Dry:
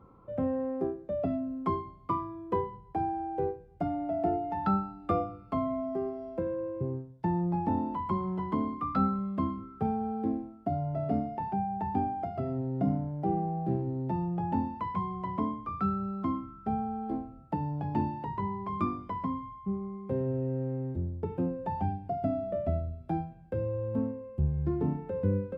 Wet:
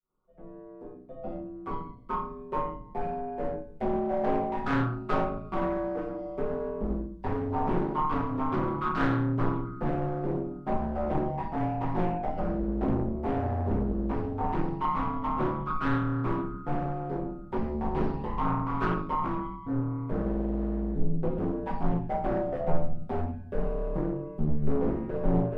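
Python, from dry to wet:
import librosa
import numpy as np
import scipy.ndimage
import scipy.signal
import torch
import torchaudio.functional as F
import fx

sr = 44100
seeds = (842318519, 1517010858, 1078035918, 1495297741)

p1 = fx.fade_in_head(x, sr, length_s=4.38)
p2 = np.clip(p1, -10.0 ** (-31.0 / 20.0), 10.0 ** (-31.0 / 20.0))
p3 = p1 + F.gain(torch.from_numpy(p2), -6.0).numpy()
p4 = p3 * np.sin(2.0 * np.pi * 76.0 * np.arange(len(p3)) / sr)
p5 = 10.0 ** (-23.5 / 20.0) * np.tanh(p4 / 10.0 ** (-23.5 / 20.0))
p6 = fx.room_shoebox(p5, sr, seeds[0], volume_m3=32.0, walls='mixed', distance_m=0.98)
p7 = fx.doppler_dist(p6, sr, depth_ms=0.66)
y = F.gain(torch.from_numpy(p7), -2.5).numpy()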